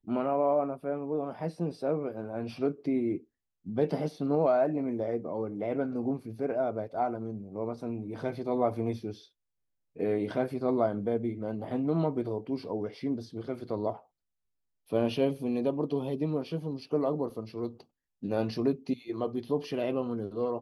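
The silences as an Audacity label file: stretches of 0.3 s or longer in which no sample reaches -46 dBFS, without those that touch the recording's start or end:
3.200000	3.660000	silence
9.240000	9.960000	silence
14.000000	14.900000	silence
17.810000	18.230000	silence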